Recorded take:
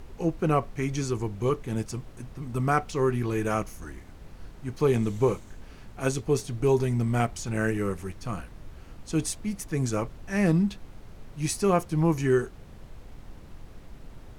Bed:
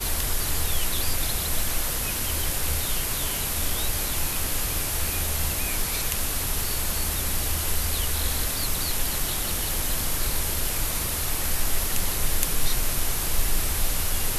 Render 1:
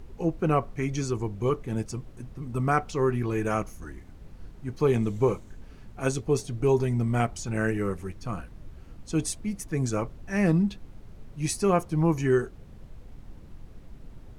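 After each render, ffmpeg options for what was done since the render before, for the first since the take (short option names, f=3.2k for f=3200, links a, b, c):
-af "afftdn=nr=6:nf=-47"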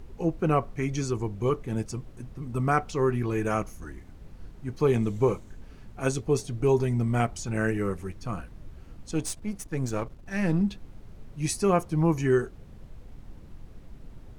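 -filter_complex "[0:a]asettb=1/sr,asplit=3[a][b][c];[a]atrim=end=9.114[d];[b]atrim=start=9.11:end=10.61,asetpts=PTS-STARTPTS,afade=t=in:d=0.004:c=qsin,afade=t=out:st=1.496:d=0.004:c=qsin,aeval=exprs='if(lt(val(0),0),0.447*val(0),val(0))':c=same[e];[c]atrim=start=10.606[f];[d][e]acrossfade=d=0.004:c1=hsin:c2=qsin[g];[g][f]acrossfade=d=0.004:c1=qsin:c2=hsin"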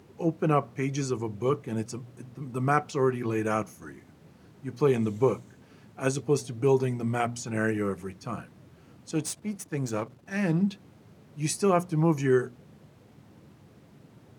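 -af "highpass=f=110:w=0.5412,highpass=f=110:w=1.3066,bandreject=f=60:t=h:w=6,bandreject=f=120:t=h:w=6,bandreject=f=180:t=h:w=6,bandreject=f=240:t=h:w=6"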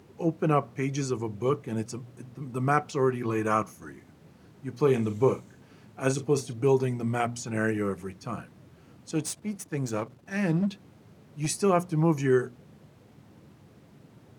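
-filter_complex "[0:a]asettb=1/sr,asplit=3[a][b][c];[a]atrim=end=3.284[d];[b]atrim=start=3.28:end=3.72,asetpts=PTS-STARTPTS,afade=t=in:d=0.004:c=qsin,afade=t=out:st=0.436:d=0.004:c=qsin,equalizer=f=1.1k:t=o:w=0.36:g=9.5[e];[c]atrim=start=3.716[f];[d][e]acrossfade=d=0.004:c1=hsin:c2=qsin[g];[g][f]acrossfade=d=0.004:c1=qsin:c2=hsin,asettb=1/sr,asplit=3[h][i][j];[h]atrim=end=4.794[k];[i]atrim=start=4.79:end=6.53,asetpts=PTS-STARTPTS,afade=t=in:d=0.004:c=qsin,afade=t=out:st=1.736:d=0.004:c=qsin,asplit=2[l][m];[m]adelay=38,volume=-10.5dB[n];[l][n]amix=inputs=2:normalize=0,atrim=end_sample=76734[o];[j]atrim=start=6.526[p];[k][o]acrossfade=d=0.004:c1=hsin:c2=qsin[q];[q][p]acrossfade=d=0.004:c1=qsin:c2=hsin,asettb=1/sr,asplit=3[r][s][t];[r]atrim=end=10.574[u];[s]atrim=start=10.57:end=11.48,asetpts=PTS-STARTPTS,afade=t=in:d=0.004:c=qsin,afade=t=out:st=0.906:d=0.004:c=qsin,asoftclip=type=hard:threshold=-22dB[v];[t]atrim=start=11.476[w];[u][v]acrossfade=d=0.004:c1=hsin:c2=qsin[x];[x][w]acrossfade=d=0.004:c1=qsin:c2=hsin"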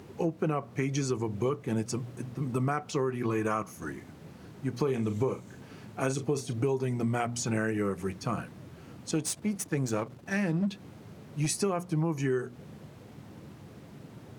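-filter_complex "[0:a]asplit=2[a][b];[b]alimiter=limit=-16dB:level=0:latency=1,volume=-0.5dB[c];[a][c]amix=inputs=2:normalize=0,acompressor=threshold=-26dB:ratio=6"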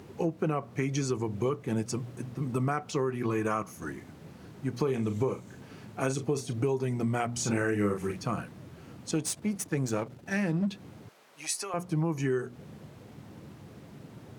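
-filter_complex "[0:a]asettb=1/sr,asplit=3[a][b][c];[a]atrim=end=7.334[d];[b]atrim=start=7.33:end=8.22,asetpts=PTS-STARTPTS,afade=t=in:d=0.004:c=qsin,afade=t=out:st=0.886:d=0.004:c=qsin,asplit=2[e][f];[f]adelay=39,volume=-3.5dB[g];[e][g]amix=inputs=2:normalize=0,atrim=end_sample=39249[h];[c]atrim=start=8.216[i];[d][h]acrossfade=d=0.004:c1=hsin:c2=qsin[j];[j][i]acrossfade=d=0.004:c1=qsin:c2=hsin,asettb=1/sr,asplit=3[k][l][m];[k]atrim=end=9.984[n];[l]atrim=start=9.98:end=10.38,asetpts=PTS-STARTPTS,afade=t=in:d=0.004:c=qsin,afade=t=out:st=0.396:d=0.004:c=qsin,bandreject=f=1.1k:w=8.2[o];[m]atrim=start=10.376[p];[n][o]acrossfade=d=0.004:c1=hsin:c2=qsin[q];[q][p]acrossfade=d=0.004:c1=qsin:c2=hsin,asettb=1/sr,asplit=3[r][s][t];[r]atrim=end=11.094[u];[s]atrim=start=11.09:end=11.74,asetpts=PTS-STARTPTS,afade=t=in:d=0.004:c=qsin,afade=t=out:st=0.646:d=0.004:c=qsin,highpass=790[v];[t]atrim=start=11.736[w];[u][v]acrossfade=d=0.004:c1=hsin:c2=qsin[x];[x][w]acrossfade=d=0.004:c1=qsin:c2=hsin"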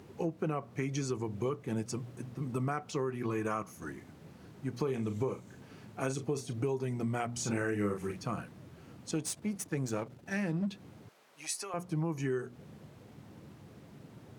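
-af "volume=-4.5dB"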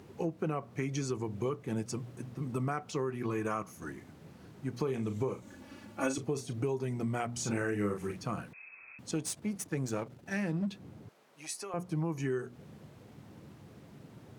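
-filter_complex "[0:a]asettb=1/sr,asplit=3[a][b][c];[a]atrim=end=5.424[d];[b]atrim=start=5.42:end=6.18,asetpts=PTS-STARTPTS,afade=t=in:d=0.004:c=qsin,afade=t=out:st=0.756:d=0.004:c=qsin,aecho=1:1:3.5:0.94,atrim=end_sample=33516[e];[c]atrim=start=6.176[f];[d][e]acrossfade=d=0.004:c1=hsin:c2=qsin[g];[g][f]acrossfade=d=0.004:c1=qsin:c2=hsin,asettb=1/sr,asplit=3[h][i][j];[h]atrim=end=8.534[k];[i]atrim=start=8.53:end=8.99,asetpts=PTS-STARTPTS,afade=t=in:d=0.004:c=qsin,afade=t=out:st=0.456:d=0.004:c=qsin,lowpass=f=2.3k:t=q:w=0.5098,lowpass=f=2.3k:t=q:w=0.6013,lowpass=f=2.3k:t=q:w=0.9,lowpass=f=2.3k:t=q:w=2.563,afreqshift=-2700[l];[j]atrim=start=8.986[m];[k][l]acrossfade=d=0.004:c1=hsin:c2=qsin[n];[n][m]acrossfade=d=0.004:c1=qsin:c2=hsin,asettb=1/sr,asplit=3[o][p][q];[o]atrim=end=10.784[r];[p]atrim=start=10.78:end=11.85,asetpts=PTS-STARTPTS,afade=t=in:d=0.004:c=qsin,afade=t=out:st=1.066:d=0.004:c=qsin,tiltshelf=f=680:g=3.5[s];[q]atrim=start=11.846[t];[r][s]acrossfade=d=0.004:c1=hsin:c2=qsin[u];[u][t]acrossfade=d=0.004:c1=qsin:c2=hsin"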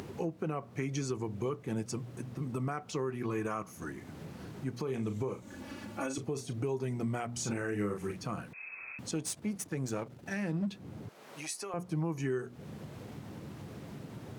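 -af "acompressor=mode=upward:threshold=-36dB:ratio=2.5,alimiter=limit=-24dB:level=0:latency=1:release=127"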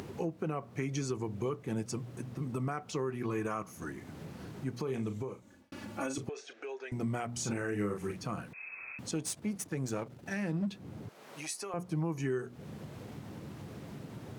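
-filter_complex "[0:a]asettb=1/sr,asplit=3[a][b][c];[a]atrim=end=6.294[d];[b]atrim=start=6.29:end=6.92,asetpts=PTS-STARTPTS,afade=t=in:d=0.004:c=qsin,afade=t=out:st=0.626:d=0.004:c=qsin,highpass=f=480:w=0.5412,highpass=f=480:w=1.3066,equalizer=f=630:t=q:w=4:g=-3,equalizer=f=1k:t=q:w=4:g=-9,equalizer=f=1.6k:t=q:w=4:g=10,equalizer=f=2.5k:t=q:w=4:g=5,equalizer=f=4.5k:t=q:w=4:g=-5,lowpass=f=5.7k:w=0.5412,lowpass=f=5.7k:w=1.3066[e];[c]atrim=start=6.916[f];[d][e]acrossfade=d=0.004:c1=hsin:c2=qsin[g];[g][f]acrossfade=d=0.004:c1=qsin:c2=hsin,asplit=2[h][i];[h]atrim=end=5.72,asetpts=PTS-STARTPTS,afade=t=out:st=4.98:d=0.74[j];[i]atrim=start=5.72,asetpts=PTS-STARTPTS,afade=t=in:d=0.004:c=hsin[k];[j][k]concat=n=2:v=0:a=1"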